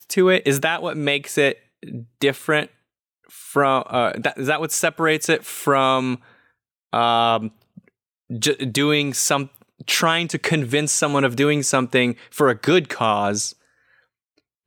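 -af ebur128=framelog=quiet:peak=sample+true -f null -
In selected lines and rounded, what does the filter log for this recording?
Integrated loudness:
  I:         -19.7 LUFS
  Threshold: -30.7 LUFS
Loudness range:
  LRA:         3.2 LU
  Threshold: -40.7 LUFS
  LRA low:   -22.4 LUFS
  LRA high:  -19.2 LUFS
Sample peak:
  Peak:       -4.3 dBFS
True peak:
  Peak:       -4.3 dBFS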